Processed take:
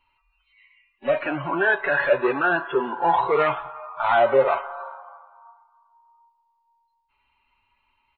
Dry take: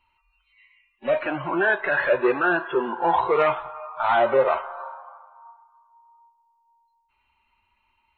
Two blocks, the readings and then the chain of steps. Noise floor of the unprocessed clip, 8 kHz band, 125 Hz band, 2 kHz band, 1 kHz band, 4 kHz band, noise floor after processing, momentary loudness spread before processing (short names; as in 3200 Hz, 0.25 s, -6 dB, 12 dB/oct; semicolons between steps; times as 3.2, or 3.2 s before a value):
-70 dBFS, n/a, +2.0 dB, +1.0 dB, +1.0 dB, +1.0 dB, -71 dBFS, 13 LU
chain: downsampling 11025 Hz; comb 7.1 ms, depth 38%